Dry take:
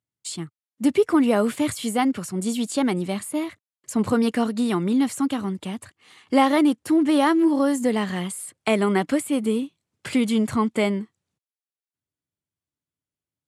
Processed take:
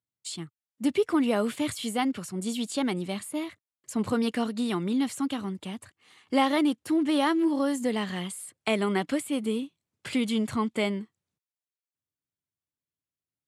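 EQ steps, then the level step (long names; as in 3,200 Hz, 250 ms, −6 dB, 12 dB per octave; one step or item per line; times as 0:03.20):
dynamic equaliser 3,400 Hz, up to +5 dB, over −44 dBFS, Q 1.2
−6.0 dB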